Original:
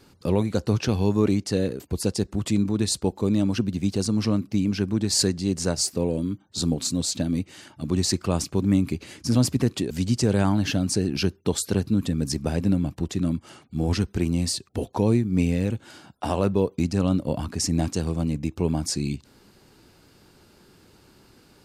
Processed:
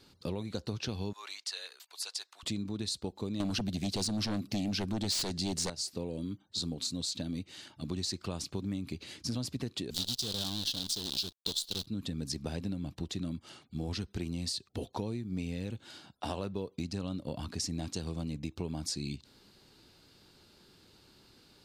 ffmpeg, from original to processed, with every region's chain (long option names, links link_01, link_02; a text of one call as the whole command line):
ffmpeg -i in.wav -filter_complex "[0:a]asettb=1/sr,asplit=3[link_01][link_02][link_03];[link_01]atrim=end=1.134[link_04];[link_02]atrim=start=1.13:end=2.43,asetpts=PTS-STARTPTS,afade=type=in:duration=0.004:curve=qsin,afade=type=out:start_time=1.296:duration=0.004:curve=qsin,highpass=frequency=930:width=0.5412,highpass=frequency=930:width=1.3066,afreqshift=-22[link_05];[link_03]atrim=start=2.426[link_06];[link_04][link_05]acrossfade=duration=0.004:curve1=hsin:curve2=qsin[link_07];[link_07][link_06]acrossfade=duration=0.004:curve1=qsin:curve2=hsin,asettb=1/sr,asplit=3[link_08][link_09][link_10];[link_08]atrim=end=3.404[link_11];[link_09]atrim=start=3.4:end=5.7,asetpts=PTS-STARTPTS,afade=type=in:duration=0.004:curve=qsin,afade=type=out:start_time=2.296:duration=0.004:curve=qsin,highshelf=frequency=7200:gain=7,aeval=exprs='0.422*sin(PI/2*3.16*val(0)/0.422)':channel_layout=same[link_12];[link_10]atrim=start=5.696[link_13];[link_11][link_12]acrossfade=duration=0.004:curve1=hsin:curve2=qsin[link_14];[link_14][link_13]acrossfade=duration=0.004:curve1=qsin:curve2=hsin,asettb=1/sr,asplit=3[link_15][link_16][link_17];[link_15]atrim=end=9.944[link_18];[link_16]atrim=start=9.94:end=11.86,asetpts=PTS-STARTPTS,afade=type=in:duration=0.004:curve=qsin,afade=type=out:start_time=1.916:duration=0.004:curve=qsin,acrusher=bits=5:dc=4:mix=0:aa=0.000001,highshelf=frequency=2800:width_type=q:width=3:gain=9[link_19];[link_17]atrim=start=11.856[link_20];[link_18][link_19]acrossfade=duration=0.004:curve1=hsin:curve2=qsin[link_21];[link_21][link_20]acrossfade=duration=0.004:curve1=qsin:curve2=hsin,equalizer=frequency=3900:width_type=o:width=0.89:gain=9.5,acompressor=threshold=-24dB:ratio=6,volume=-8dB" out.wav